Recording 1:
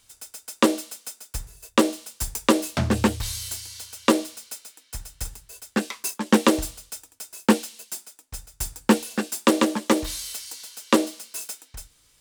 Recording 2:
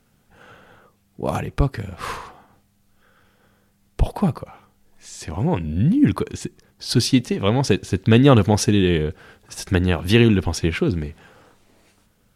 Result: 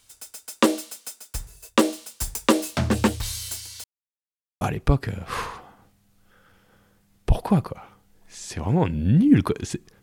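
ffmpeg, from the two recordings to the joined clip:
-filter_complex "[0:a]apad=whole_dur=10.02,atrim=end=10.02,asplit=2[a][b];[a]atrim=end=3.84,asetpts=PTS-STARTPTS,afade=t=out:st=3.836:d=0.004:c=hsin[c];[b]atrim=start=3.84:end=4.61,asetpts=PTS-STARTPTS,volume=0[d];[1:a]atrim=start=1.32:end=6.73,asetpts=PTS-STARTPTS,afade=t=in:d=0.004:c=hsin[e];[c][d][e]concat=n=3:v=0:a=1"

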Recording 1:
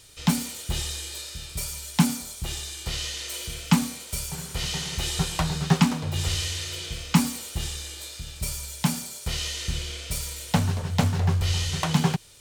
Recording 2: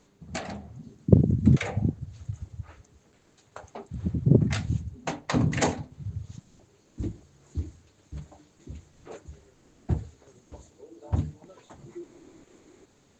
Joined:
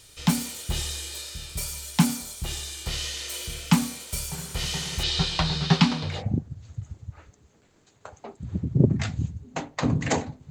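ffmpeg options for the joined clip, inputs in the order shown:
-filter_complex "[0:a]asettb=1/sr,asplit=3[a][b][c];[a]atrim=end=5.034[d];[b]atrim=start=5.03:end=6.23,asetpts=PTS-STARTPTS,afade=t=in:d=0.004:c=qsin,afade=t=out:st=1.196:d=0.004:c=qsin,lowpass=f=4.3k:t=q:w=2.3[e];[c]atrim=start=6.226[f];[d][e]acrossfade=d=0.004:c1=hsin:c2=qsin[g];[g][f]acrossfade=d=0.004:c1=qsin:c2=hsin,apad=whole_dur=10.5,atrim=end=10.5,atrim=end=6.23,asetpts=PTS-STARTPTS[h];[1:a]atrim=start=1.56:end=6.01,asetpts=PTS-STARTPTS[i];[h][i]acrossfade=d=0.18:c1=tri:c2=tri"

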